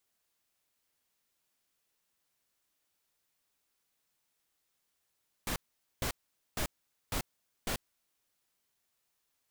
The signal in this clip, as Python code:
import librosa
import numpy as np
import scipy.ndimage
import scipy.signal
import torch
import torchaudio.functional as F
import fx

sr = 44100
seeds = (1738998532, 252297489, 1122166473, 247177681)

y = fx.noise_burst(sr, seeds[0], colour='pink', on_s=0.09, off_s=0.46, bursts=5, level_db=-33.5)